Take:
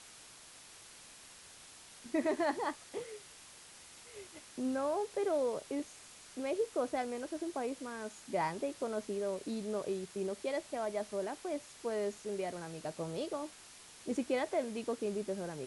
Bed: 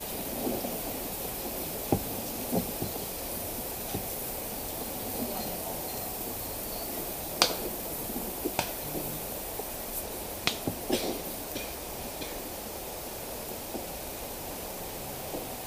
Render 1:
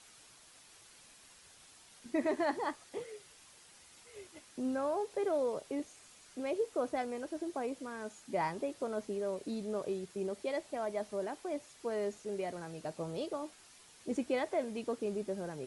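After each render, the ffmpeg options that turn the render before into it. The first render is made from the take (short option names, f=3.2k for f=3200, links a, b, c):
-af "afftdn=nr=6:nf=-56"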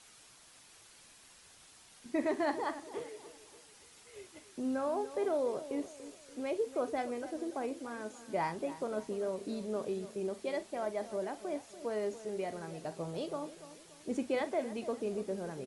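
-filter_complex "[0:a]asplit=2[a][b];[b]adelay=42,volume=-13.5dB[c];[a][c]amix=inputs=2:normalize=0,asplit=2[d][e];[e]adelay=288,lowpass=f=2k:p=1,volume=-13.5dB,asplit=2[f][g];[g]adelay=288,lowpass=f=2k:p=1,volume=0.43,asplit=2[h][i];[i]adelay=288,lowpass=f=2k:p=1,volume=0.43,asplit=2[j][k];[k]adelay=288,lowpass=f=2k:p=1,volume=0.43[l];[d][f][h][j][l]amix=inputs=5:normalize=0"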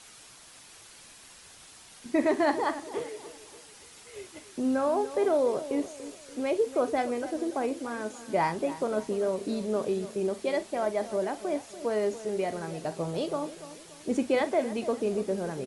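-af "volume=7.5dB"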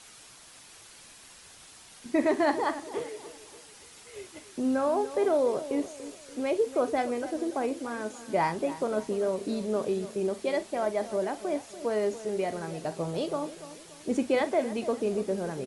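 -af anull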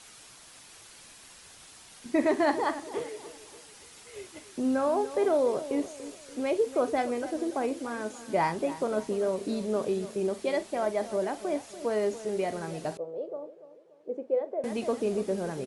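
-filter_complex "[0:a]asettb=1/sr,asplit=3[a][b][c];[a]atrim=end=12.974[d];[b]atrim=start=12.97:end=14.64,asetpts=PTS-STARTPTS,afade=t=in:d=0.004:c=qsin,afade=t=out:st=1.666:d=0.004:c=qsin,bandpass=f=500:t=q:w=4.1[e];[c]atrim=start=14.636[f];[d][e]acrossfade=d=0.004:c1=hsin:c2=qsin[g];[g][f]acrossfade=d=0.004:c1=qsin:c2=hsin"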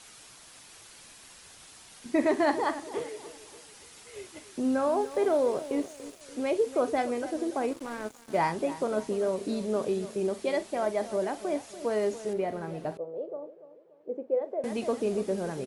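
-filter_complex "[0:a]asettb=1/sr,asplit=3[a][b][c];[a]atrim=end=5.014[d];[b]atrim=start=5.01:end=6.21,asetpts=PTS-STARTPTS,afade=t=in:d=0.004:c=qsin,afade=t=out:st=1.196:d=0.004:c=qsin,aeval=exprs='sgn(val(0))*max(abs(val(0))-0.00251,0)':c=same[e];[c]atrim=start=6.206[f];[d][e]acrossfade=d=0.004:c1=hsin:c2=qsin[g];[g][f]acrossfade=d=0.004:c1=qsin:c2=hsin,asettb=1/sr,asplit=3[h][i][j];[h]atrim=end=7.714[k];[i]atrim=start=7.71:end=8.38,asetpts=PTS-STARTPTS,afade=t=in:d=0.004:c=qsin,afade=t=out:st=0.666:d=0.004:c=qsin,aeval=exprs='sgn(val(0))*max(abs(val(0))-0.00708,0)':c=same[l];[j]atrim=start=8.376[m];[k][l]acrossfade=d=0.004:c1=hsin:c2=qsin[n];[n][m]acrossfade=d=0.004:c1=qsin:c2=hsin,asettb=1/sr,asplit=3[o][p][q];[o]atrim=end=12.334[r];[p]atrim=start=12.33:end=14.42,asetpts=PTS-STARTPTS,afade=t=in:d=0.004:c=qsin,afade=t=out:st=2.086:d=0.004:c=qsin,equalizer=f=7.5k:t=o:w=2.2:g=-13[s];[q]atrim=start=14.416[t];[r][s]acrossfade=d=0.004:c1=hsin:c2=qsin[u];[u][t]acrossfade=d=0.004:c1=qsin:c2=hsin"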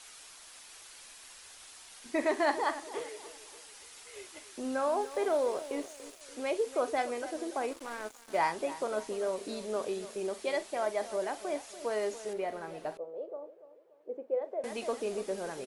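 -af "equalizer=f=140:t=o:w=2.5:g=-14.5"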